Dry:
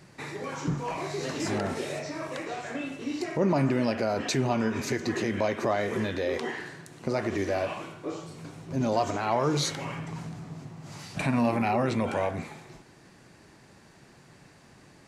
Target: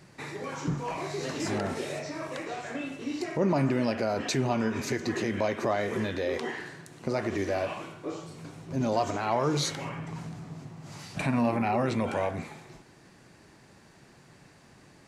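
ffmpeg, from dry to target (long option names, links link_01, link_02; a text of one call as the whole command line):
ffmpeg -i in.wav -filter_complex "[0:a]asplit=3[link_01][link_02][link_03];[link_01]afade=type=out:start_time=9.88:duration=0.02[link_04];[link_02]adynamicequalizer=threshold=0.00501:dfrequency=2700:dqfactor=0.7:tfrequency=2700:tqfactor=0.7:attack=5:release=100:ratio=0.375:range=3.5:mode=cutabove:tftype=highshelf,afade=type=in:start_time=9.88:duration=0.02,afade=type=out:start_time=11.72:duration=0.02[link_05];[link_03]afade=type=in:start_time=11.72:duration=0.02[link_06];[link_04][link_05][link_06]amix=inputs=3:normalize=0,volume=-1dB" out.wav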